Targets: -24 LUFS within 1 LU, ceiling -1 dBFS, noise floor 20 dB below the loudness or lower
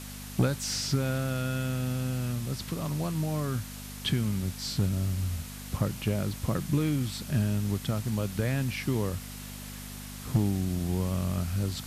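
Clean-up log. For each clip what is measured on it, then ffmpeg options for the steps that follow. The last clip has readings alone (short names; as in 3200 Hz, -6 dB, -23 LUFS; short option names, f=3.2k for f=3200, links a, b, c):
hum 50 Hz; harmonics up to 250 Hz; hum level -41 dBFS; noise floor -41 dBFS; noise floor target -51 dBFS; loudness -30.5 LUFS; peak -15.5 dBFS; loudness target -24.0 LUFS
-> -af "bandreject=f=50:t=h:w=4,bandreject=f=100:t=h:w=4,bandreject=f=150:t=h:w=4,bandreject=f=200:t=h:w=4,bandreject=f=250:t=h:w=4"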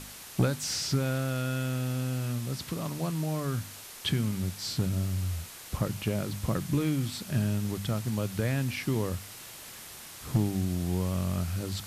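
hum none; noise floor -46 dBFS; noise floor target -51 dBFS
-> -af "afftdn=nr=6:nf=-46"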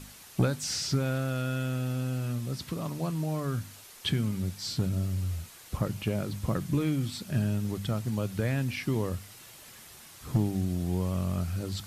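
noise floor -51 dBFS; loudness -31.0 LUFS; peak -15.5 dBFS; loudness target -24.0 LUFS
-> -af "volume=7dB"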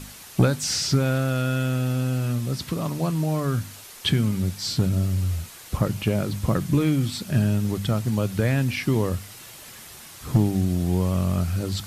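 loudness -24.0 LUFS; peak -8.5 dBFS; noise floor -44 dBFS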